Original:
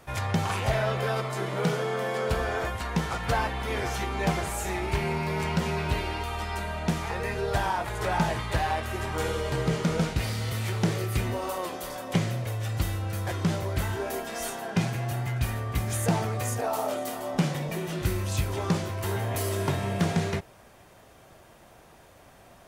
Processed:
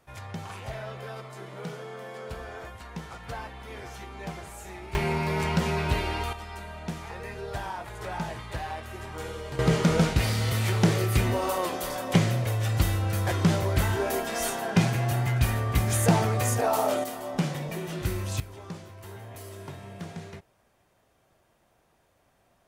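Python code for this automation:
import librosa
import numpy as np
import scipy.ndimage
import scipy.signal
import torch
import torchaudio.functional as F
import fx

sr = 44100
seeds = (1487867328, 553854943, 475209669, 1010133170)

y = fx.gain(x, sr, db=fx.steps((0.0, -11.0), (4.95, 1.5), (6.33, -7.5), (9.59, 4.0), (17.04, -2.0), (18.4, -13.5)))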